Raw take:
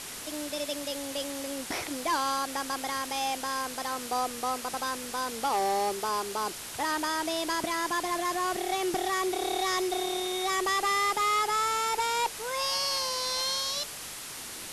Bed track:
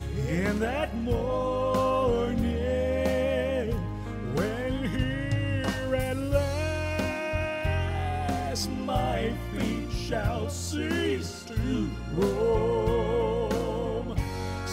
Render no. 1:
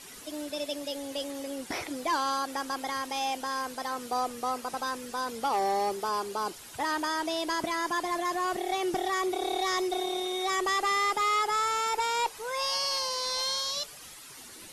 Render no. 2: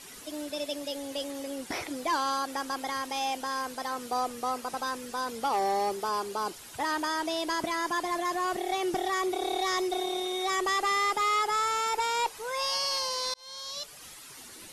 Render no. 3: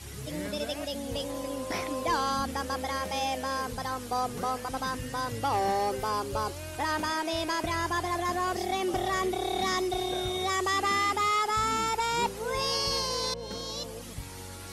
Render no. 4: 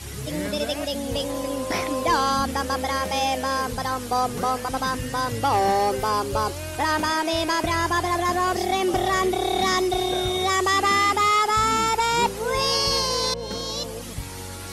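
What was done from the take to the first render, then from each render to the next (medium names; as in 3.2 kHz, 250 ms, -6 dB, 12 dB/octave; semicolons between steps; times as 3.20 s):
noise reduction 11 dB, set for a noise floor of -41 dBFS
13.34–14.07 s: fade in
add bed track -11.5 dB
trim +7 dB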